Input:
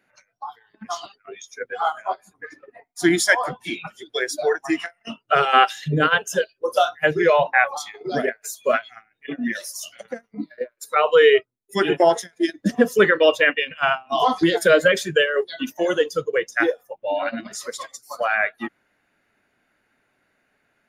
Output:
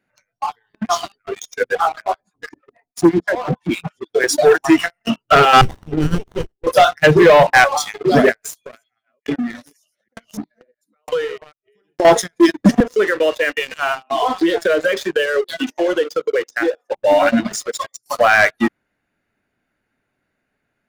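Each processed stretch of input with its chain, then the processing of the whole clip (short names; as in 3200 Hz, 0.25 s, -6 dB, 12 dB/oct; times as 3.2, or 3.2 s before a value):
1.75–4.24 treble ducked by the level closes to 620 Hz, closed at -15.5 dBFS + harmonic tremolo 6.2 Hz, depth 100%, crossover 790 Hz
5.61–6.67 double band-pass 1000 Hz, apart 3 oct + running maximum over 17 samples
8.35–12.05 reverse delay 0.289 s, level -5.5 dB + compressor 8:1, threshold -26 dBFS + dB-ramp tremolo decaying 1.1 Hz, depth 37 dB
12.8–16.92 HPF 290 Hz 24 dB/oct + compressor 2.5:1, threshold -30 dBFS + air absorption 97 m
17.56–18.06 formant sharpening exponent 1.5 + notch comb 250 Hz + upward expander, over -52 dBFS
whole clip: low shelf 290 Hz +9 dB; sample leveller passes 3; gain -1 dB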